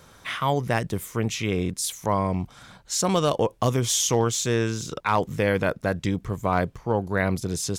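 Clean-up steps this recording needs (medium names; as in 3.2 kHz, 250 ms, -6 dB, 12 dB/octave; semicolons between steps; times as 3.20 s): clip repair -11.5 dBFS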